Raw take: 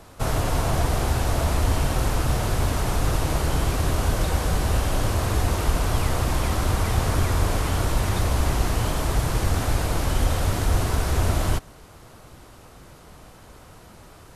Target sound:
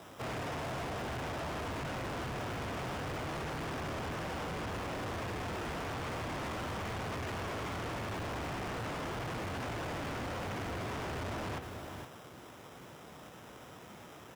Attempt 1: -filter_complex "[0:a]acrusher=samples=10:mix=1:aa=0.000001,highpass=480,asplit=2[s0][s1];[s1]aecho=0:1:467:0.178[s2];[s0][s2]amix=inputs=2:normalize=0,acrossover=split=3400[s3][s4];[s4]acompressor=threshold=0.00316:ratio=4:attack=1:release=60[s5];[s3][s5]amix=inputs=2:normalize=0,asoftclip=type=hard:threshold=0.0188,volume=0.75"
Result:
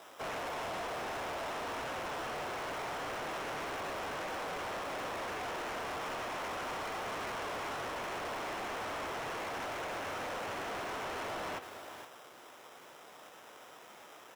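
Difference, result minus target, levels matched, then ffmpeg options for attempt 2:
125 Hz band -13.5 dB
-filter_complex "[0:a]acrusher=samples=10:mix=1:aa=0.000001,highpass=140,asplit=2[s0][s1];[s1]aecho=0:1:467:0.178[s2];[s0][s2]amix=inputs=2:normalize=0,acrossover=split=3400[s3][s4];[s4]acompressor=threshold=0.00316:ratio=4:attack=1:release=60[s5];[s3][s5]amix=inputs=2:normalize=0,asoftclip=type=hard:threshold=0.0188,volume=0.75"

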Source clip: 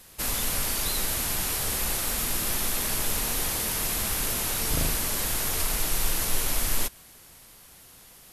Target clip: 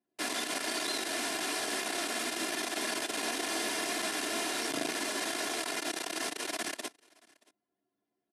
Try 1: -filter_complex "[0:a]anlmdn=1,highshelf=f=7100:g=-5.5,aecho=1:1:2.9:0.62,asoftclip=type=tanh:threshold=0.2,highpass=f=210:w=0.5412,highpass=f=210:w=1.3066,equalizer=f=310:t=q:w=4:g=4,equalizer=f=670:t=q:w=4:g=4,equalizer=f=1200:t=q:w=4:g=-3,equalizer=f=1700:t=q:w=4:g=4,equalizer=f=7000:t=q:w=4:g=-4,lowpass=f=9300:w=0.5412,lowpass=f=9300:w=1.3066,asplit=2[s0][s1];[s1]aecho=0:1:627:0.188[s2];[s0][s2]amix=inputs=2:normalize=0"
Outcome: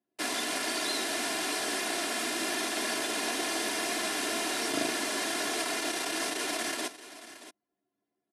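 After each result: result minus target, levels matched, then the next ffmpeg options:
echo-to-direct +12 dB; saturation: distortion -11 dB
-filter_complex "[0:a]anlmdn=1,highshelf=f=7100:g=-5.5,aecho=1:1:2.9:0.62,asoftclip=type=tanh:threshold=0.2,highpass=f=210:w=0.5412,highpass=f=210:w=1.3066,equalizer=f=310:t=q:w=4:g=4,equalizer=f=670:t=q:w=4:g=4,equalizer=f=1200:t=q:w=4:g=-3,equalizer=f=1700:t=q:w=4:g=4,equalizer=f=7000:t=q:w=4:g=-4,lowpass=f=9300:w=0.5412,lowpass=f=9300:w=1.3066,asplit=2[s0][s1];[s1]aecho=0:1:627:0.0473[s2];[s0][s2]amix=inputs=2:normalize=0"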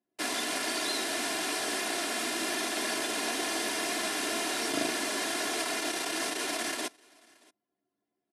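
saturation: distortion -11 dB
-filter_complex "[0:a]anlmdn=1,highshelf=f=7100:g=-5.5,aecho=1:1:2.9:0.62,asoftclip=type=tanh:threshold=0.0668,highpass=f=210:w=0.5412,highpass=f=210:w=1.3066,equalizer=f=310:t=q:w=4:g=4,equalizer=f=670:t=q:w=4:g=4,equalizer=f=1200:t=q:w=4:g=-3,equalizer=f=1700:t=q:w=4:g=4,equalizer=f=7000:t=q:w=4:g=-4,lowpass=f=9300:w=0.5412,lowpass=f=9300:w=1.3066,asplit=2[s0][s1];[s1]aecho=0:1:627:0.0473[s2];[s0][s2]amix=inputs=2:normalize=0"

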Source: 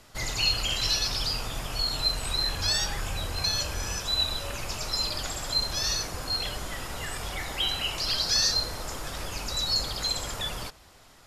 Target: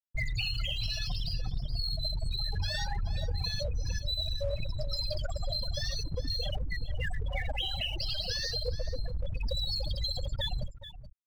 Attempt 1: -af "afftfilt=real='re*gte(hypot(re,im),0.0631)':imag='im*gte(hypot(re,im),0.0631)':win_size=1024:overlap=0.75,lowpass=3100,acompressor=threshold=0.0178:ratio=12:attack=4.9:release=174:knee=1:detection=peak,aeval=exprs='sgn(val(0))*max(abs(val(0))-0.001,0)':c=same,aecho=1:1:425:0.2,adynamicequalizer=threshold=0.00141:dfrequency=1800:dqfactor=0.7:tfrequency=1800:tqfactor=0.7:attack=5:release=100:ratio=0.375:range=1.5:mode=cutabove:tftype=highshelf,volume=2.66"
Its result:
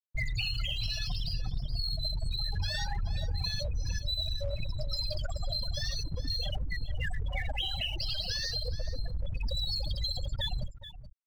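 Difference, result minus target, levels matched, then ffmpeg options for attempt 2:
500 Hz band -4.5 dB
-af "afftfilt=real='re*gte(hypot(re,im),0.0631)':imag='im*gte(hypot(re,im),0.0631)':win_size=1024:overlap=0.75,lowpass=3100,acompressor=threshold=0.0178:ratio=12:attack=4.9:release=174:knee=1:detection=peak,equalizer=f=480:t=o:w=0.54:g=7.5,aeval=exprs='sgn(val(0))*max(abs(val(0))-0.001,0)':c=same,aecho=1:1:425:0.2,adynamicequalizer=threshold=0.00141:dfrequency=1800:dqfactor=0.7:tfrequency=1800:tqfactor=0.7:attack=5:release=100:ratio=0.375:range=1.5:mode=cutabove:tftype=highshelf,volume=2.66"

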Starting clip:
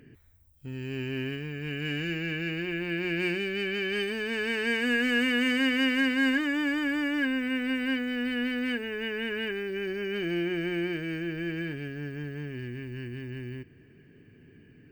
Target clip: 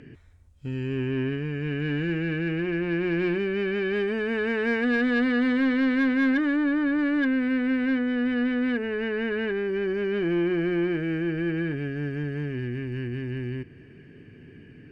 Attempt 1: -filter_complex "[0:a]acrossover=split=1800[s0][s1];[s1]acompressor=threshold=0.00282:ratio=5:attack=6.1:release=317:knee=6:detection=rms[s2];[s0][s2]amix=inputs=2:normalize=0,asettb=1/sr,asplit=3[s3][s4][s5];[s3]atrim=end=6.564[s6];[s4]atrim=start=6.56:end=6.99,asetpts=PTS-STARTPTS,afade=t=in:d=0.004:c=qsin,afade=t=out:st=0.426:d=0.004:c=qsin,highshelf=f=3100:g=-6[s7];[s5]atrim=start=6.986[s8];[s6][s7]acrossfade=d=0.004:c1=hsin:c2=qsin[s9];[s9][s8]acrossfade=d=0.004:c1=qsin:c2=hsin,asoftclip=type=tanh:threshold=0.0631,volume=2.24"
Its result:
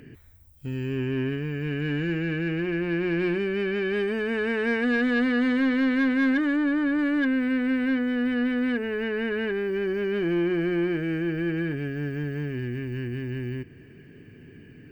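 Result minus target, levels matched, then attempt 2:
8 kHz band +3.5 dB
-filter_complex "[0:a]acrossover=split=1800[s0][s1];[s1]acompressor=threshold=0.00282:ratio=5:attack=6.1:release=317:knee=6:detection=rms,lowpass=6400[s2];[s0][s2]amix=inputs=2:normalize=0,asettb=1/sr,asplit=3[s3][s4][s5];[s3]atrim=end=6.564[s6];[s4]atrim=start=6.56:end=6.99,asetpts=PTS-STARTPTS,afade=t=in:d=0.004:c=qsin,afade=t=out:st=0.426:d=0.004:c=qsin,highshelf=f=3100:g=-6[s7];[s5]atrim=start=6.986[s8];[s6][s7]acrossfade=d=0.004:c1=hsin:c2=qsin[s9];[s9][s8]acrossfade=d=0.004:c1=qsin:c2=hsin,asoftclip=type=tanh:threshold=0.0631,volume=2.24"

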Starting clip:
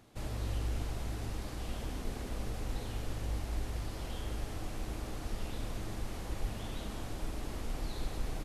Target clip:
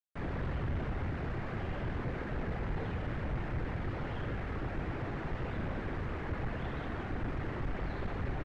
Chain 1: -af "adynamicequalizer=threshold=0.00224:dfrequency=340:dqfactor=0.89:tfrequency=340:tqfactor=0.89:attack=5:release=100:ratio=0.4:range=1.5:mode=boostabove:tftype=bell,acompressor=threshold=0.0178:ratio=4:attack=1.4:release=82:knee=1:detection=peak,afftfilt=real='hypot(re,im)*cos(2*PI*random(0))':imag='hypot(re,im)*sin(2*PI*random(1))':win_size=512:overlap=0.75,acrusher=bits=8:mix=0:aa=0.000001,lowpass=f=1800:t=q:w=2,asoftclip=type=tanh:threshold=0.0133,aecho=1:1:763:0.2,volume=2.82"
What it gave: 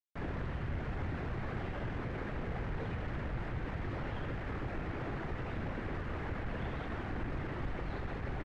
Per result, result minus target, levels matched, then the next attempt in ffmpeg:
compression: peak gain reduction +8.5 dB; echo 407 ms early
-af "adynamicequalizer=threshold=0.00224:dfrequency=340:dqfactor=0.89:tfrequency=340:tqfactor=0.89:attack=5:release=100:ratio=0.4:range=1.5:mode=boostabove:tftype=bell,afftfilt=real='hypot(re,im)*cos(2*PI*random(0))':imag='hypot(re,im)*sin(2*PI*random(1))':win_size=512:overlap=0.75,acrusher=bits=8:mix=0:aa=0.000001,lowpass=f=1800:t=q:w=2,asoftclip=type=tanh:threshold=0.0133,aecho=1:1:763:0.2,volume=2.82"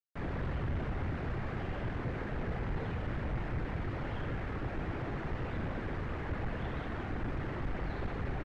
echo 407 ms early
-af "adynamicequalizer=threshold=0.00224:dfrequency=340:dqfactor=0.89:tfrequency=340:tqfactor=0.89:attack=5:release=100:ratio=0.4:range=1.5:mode=boostabove:tftype=bell,afftfilt=real='hypot(re,im)*cos(2*PI*random(0))':imag='hypot(re,im)*sin(2*PI*random(1))':win_size=512:overlap=0.75,acrusher=bits=8:mix=0:aa=0.000001,lowpass=f=1800:t=q:w=2,asoftclip=type=tanh:threshold=0.0133,aecho=1:1:1170:0.2,volume=2.82"

